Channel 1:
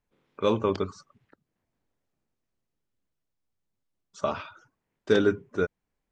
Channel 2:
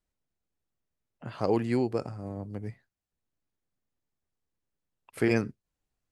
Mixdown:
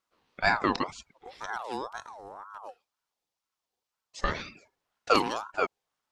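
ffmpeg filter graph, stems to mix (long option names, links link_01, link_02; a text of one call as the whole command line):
ffmpeg -i stem1.wav -i stem2.wav -filter_complex "[0:a]volume=1.5dB[link_01];[1:a]equalizer=frequency=810:width=0.44:gain=-13,bandreject=frequency=4800:width=16,volume=0dB,asplit=2[link_02][link_03];[link_03]apad=whole_len=269841[link_04];[link_01][link_04]sidechaincompress=threshold=-46dB:ratio=8:attack=22:release=158[link_05];[link_05][link_02]amix=inputs=2:normalize=0,highpass=81,equalizer=frequency=4400:width=1.1:gain=8.5,aeval=exprs='val(0)*sin(2*PI*910*n/s+910*0.35/2*sin(2*PI*2*n/s))':channel_layout=same" out.wav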